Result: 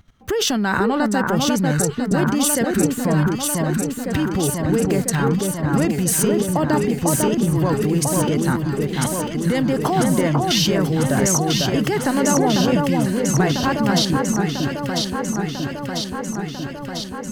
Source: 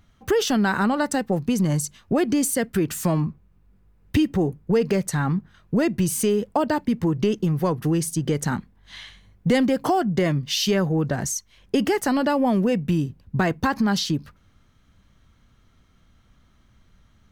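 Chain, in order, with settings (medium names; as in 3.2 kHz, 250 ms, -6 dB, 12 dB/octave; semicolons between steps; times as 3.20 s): level held to a coarse grid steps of 14 dB; echo whose repeats swap between lows and highs 498 ms, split 1.7 kHz, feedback 84%, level -2 dB; trim +8.5 dB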